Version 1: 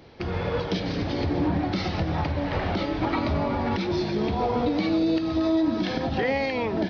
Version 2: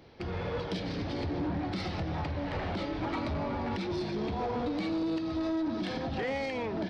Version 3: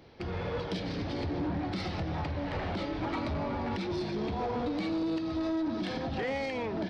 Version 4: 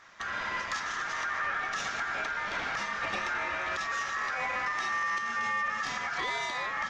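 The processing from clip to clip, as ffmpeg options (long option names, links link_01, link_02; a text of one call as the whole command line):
ffmpeg -i in.wav -af "asoftclip=type=tanh:threshold=-21dB,volume=-5.5dB" out.wav
ffmpeg -i in.wav -af anull out.wav
ffmpeg -i in.wav -af "equalizer=frequency=5800:width=1.2:gain=6.5,aeval=exprs='val(0)*sin(2*PI*1500*n/s)':channel_layout=same,volume=3dB" out.wav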